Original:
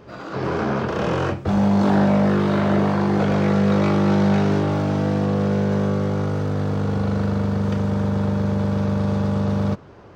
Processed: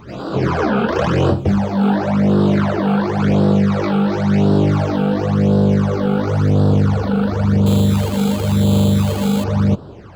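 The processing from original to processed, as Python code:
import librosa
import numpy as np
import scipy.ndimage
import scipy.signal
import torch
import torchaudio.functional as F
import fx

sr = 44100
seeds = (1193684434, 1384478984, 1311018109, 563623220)

p1 = fx.over_compress(x, sr, threshold_db=-22.0, ratio=-1.0)
p2 = x + (p1 * 10.0 ** (3.0 / 20.0))
p3 = fx.phaser_stages(p2, sr, stages=12, low_hz=100.0, high_hz=2200.0, hz=0.94, feedback_pct=20)
y = fx.sample_hold(p3, sr, seeds[0], rate_hz=3700.0, jitter_pct=0, at=(7.66, 9.44))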